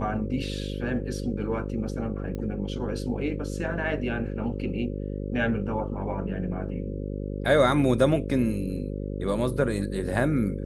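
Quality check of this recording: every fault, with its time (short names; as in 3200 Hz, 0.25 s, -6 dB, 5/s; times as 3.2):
buzz 50 Hz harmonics 11 -32 dBFS
2.35 pop -23 dBFS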